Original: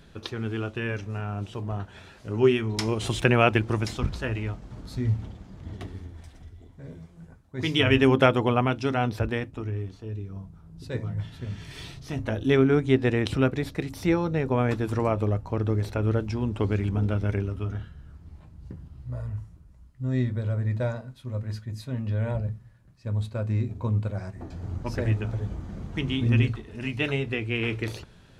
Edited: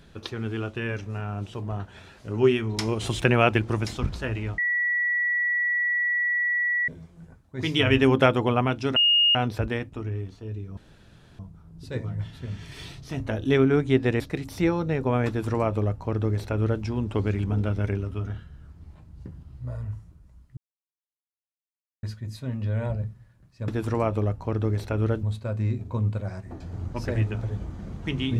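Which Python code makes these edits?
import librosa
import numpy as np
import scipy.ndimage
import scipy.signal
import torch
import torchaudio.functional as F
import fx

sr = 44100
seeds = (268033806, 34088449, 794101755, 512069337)

y = fx.edit(x, sr, fx.bleep(start_s=4.58, length_s=2.3, hz=1940.0, db=-21.5),
    fx.insert_tone(at_s=8.96, length_s=0.39, hz=2850.0, db=-16.0),
    fx.insert_room_tone(at_s=10.38, length_s=0.62),
    fx.cut(start_s=13.19, length_s=0.46),
    fx.duplicate(start_s=14.73, length_s=1.55, to_s=23.13),
    fx.silence(start_s=20.02, length_s=1.46), tone=tone)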